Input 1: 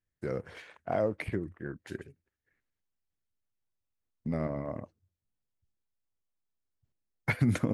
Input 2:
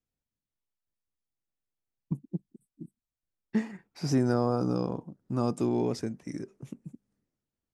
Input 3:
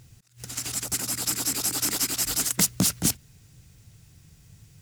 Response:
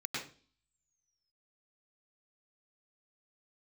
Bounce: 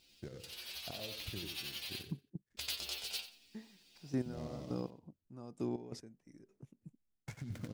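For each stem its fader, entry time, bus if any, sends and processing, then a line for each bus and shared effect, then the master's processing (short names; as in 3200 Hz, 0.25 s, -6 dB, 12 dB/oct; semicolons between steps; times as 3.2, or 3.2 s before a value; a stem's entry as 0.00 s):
-8.5 dB, 0.00 s, bus A, no send, echo send -11.5 dB, chopper 1.6 Hz, depth 60%, duty 45%; noise-modulated delay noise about 4000 Hz, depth 0.05 ms
-9.5 dB, 0.00 s, no bus, no send, no echo send, step gate "...xx..x..." 185 bpm -12 dB
-5.0 dB, 0.00 s, muted 1.94–2.57, bus A, no send, echo send -3.5 dB, spectral gate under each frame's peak -15 dB weak; band shelf 3500 Hz +13.5 dB 1.3 oct; metallic resonator 70 Hz, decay 0.33 s, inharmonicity 0.002
bus A: 0.0 dB, low shelf 150 Hz +10.5 dB; compressor 3:1, threshold -44 dBFS, peak gain reduction 12.5 dB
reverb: off
echo: feedback echo 90 ms, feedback 22%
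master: bell 1200 Hz -2.5 dB 0.44 oct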